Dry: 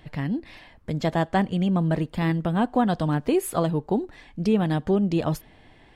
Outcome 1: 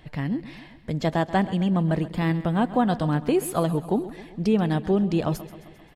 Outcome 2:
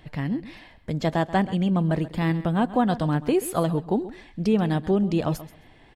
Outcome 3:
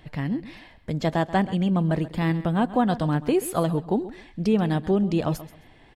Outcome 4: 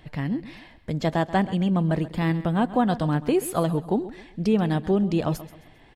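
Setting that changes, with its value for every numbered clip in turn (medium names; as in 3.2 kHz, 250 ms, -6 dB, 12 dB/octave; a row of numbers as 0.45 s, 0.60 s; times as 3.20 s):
feedback delay, feedback: 59%, 16%, 23%, 35%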